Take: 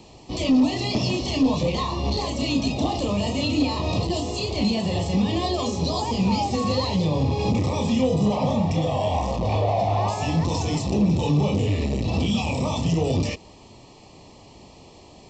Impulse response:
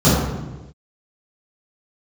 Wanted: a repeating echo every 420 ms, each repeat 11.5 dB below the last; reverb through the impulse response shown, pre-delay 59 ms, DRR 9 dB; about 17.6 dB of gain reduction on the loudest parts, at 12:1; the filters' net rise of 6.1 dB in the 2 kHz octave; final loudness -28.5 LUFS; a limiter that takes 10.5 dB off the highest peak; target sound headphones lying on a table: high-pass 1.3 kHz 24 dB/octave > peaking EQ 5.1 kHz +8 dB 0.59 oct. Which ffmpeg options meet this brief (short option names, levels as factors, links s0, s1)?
-filter_complex "[0:a]equalizer=f=2000:t=o:g=7.5,acompressor=threshold=0.02:ratio=12,alimiter=level_in=3.76:limit=0.0631:level=0:latency=1,volume=0.266,aecho=1:1:420|840|1260:0.266|0.0718|0.0194,asplit=2[s0][s1];[1:a]atrim=start_sample=2205,adelay=59[s2];[s1][s2]afir=irnorm=-1:irlink=0,volume=0.0211[s3];[s0][s3]amix=inputs=2:normalize=0,highpass=f=1300:w=0.5412,highpass=f=1300:w=1.3066,equalizer=f=5100:t=o:w=0.59:g=8,volume=7.94"